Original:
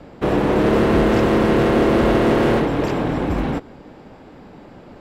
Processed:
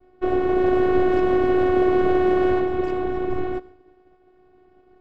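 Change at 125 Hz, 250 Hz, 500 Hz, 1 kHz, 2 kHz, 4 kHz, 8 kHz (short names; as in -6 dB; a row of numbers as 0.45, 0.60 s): -12.5 dB, -4.0 dB, -1.5 dB, -2.5 dB, -6.0 dB, under -10 dB, n/a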